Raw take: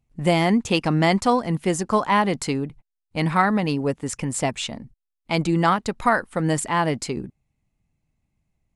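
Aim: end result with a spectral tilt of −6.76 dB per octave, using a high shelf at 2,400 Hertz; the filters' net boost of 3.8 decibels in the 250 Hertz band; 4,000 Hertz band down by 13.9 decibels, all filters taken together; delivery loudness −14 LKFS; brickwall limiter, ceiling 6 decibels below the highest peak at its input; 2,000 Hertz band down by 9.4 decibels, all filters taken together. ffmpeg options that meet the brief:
ffmpeg -i in.wav -af "equalizer=frequency=250:width_type=o:gain=5.5,equalizer=frequency=2000:width_type=o:gain=-6,highshelf=frequency=2400:gain=-9,equalizer=frequency=4000:width_type=o:gain=-8.5,volume=8.5dB,alimiter=limit=-3dB:level=0:latency=1" out.wav

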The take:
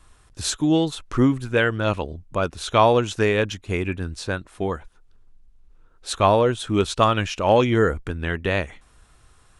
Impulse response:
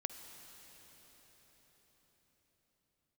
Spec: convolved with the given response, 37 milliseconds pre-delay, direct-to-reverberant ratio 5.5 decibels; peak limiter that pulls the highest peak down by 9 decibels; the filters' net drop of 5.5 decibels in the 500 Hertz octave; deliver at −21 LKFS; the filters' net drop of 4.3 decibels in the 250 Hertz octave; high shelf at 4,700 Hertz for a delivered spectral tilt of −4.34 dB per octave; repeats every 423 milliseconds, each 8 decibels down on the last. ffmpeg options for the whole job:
-filter_complex "[0:a]equalizer=frequency=250:width_type=o:gain=-3.5,equalizer=frequency=500:width_type=o:gain=-6,highshelf=frequency=4700:gain=4.5,alimiter=limit=-14dB:level=0:latency=1,aecho=1:1:423|846|1269|1692|2115:0.398|0.159|0.0637|0.0255|0.0102,asplit=2[link_01][link_02];[1:a]atrim=start_sample=2205,adelay=37[link_03];[link_02][link_03]afir=irnorm=-1:irlink=0,volume=-4.5dB[link_04];[link_01][link_04]amix=inputs=2:normalize=0,volume=4dB"

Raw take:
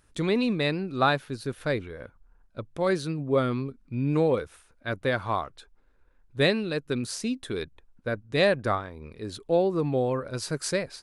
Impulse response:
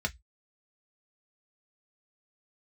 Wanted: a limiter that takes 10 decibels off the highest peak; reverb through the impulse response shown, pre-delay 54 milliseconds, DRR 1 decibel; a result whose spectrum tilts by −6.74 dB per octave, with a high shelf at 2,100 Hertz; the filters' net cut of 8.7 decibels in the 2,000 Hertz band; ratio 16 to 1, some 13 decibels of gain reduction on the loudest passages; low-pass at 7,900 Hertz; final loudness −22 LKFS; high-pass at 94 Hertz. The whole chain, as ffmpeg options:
-filter_complex "[0:a]highpass=94,lowpass=7900,equalizer=frequency=2000:width_type=o:gain=-7,highshelf=frequency=2100:gain=-8,acompressor=threshold=-32dB:ratio=16,alimiter=level_in=7.5dB:limit=-24dB:level=0:latency=1,volume=-7.5dB,asplit=2[link_01][link_02];[1:a]atrim=start_sample=2205,adelay=54[link_03];[link_02][link_03]afir=irnorm=-1:irlink=0,volume=-6.5dB[link_04];[link_01][link_04]amix=inputs=2:normalize=0,volume=17dB"

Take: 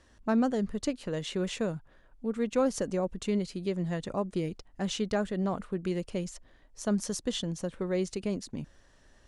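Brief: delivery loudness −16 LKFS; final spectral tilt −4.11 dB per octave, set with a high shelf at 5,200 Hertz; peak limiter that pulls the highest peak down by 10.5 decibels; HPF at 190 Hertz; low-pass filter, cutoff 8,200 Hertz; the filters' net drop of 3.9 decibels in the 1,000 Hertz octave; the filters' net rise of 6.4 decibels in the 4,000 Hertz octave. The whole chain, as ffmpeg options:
ffmpeg -i in.wav -af "highpass=190,lowpass=8200,equalizer=frequency=1000:width_type=o:gain=-6,equalizer=frequency=4000:width_type=o:gain=5.5,highshelf=frequency=5200:gain=8,volume=19dB,alimiter=limit=-5.5dB:level=0:latency=1" out.wav

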